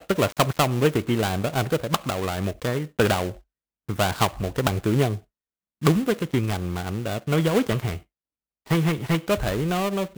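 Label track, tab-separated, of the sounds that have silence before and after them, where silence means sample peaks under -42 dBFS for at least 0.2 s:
3.890000	5.200000	sound
5.820000	8.020000	sound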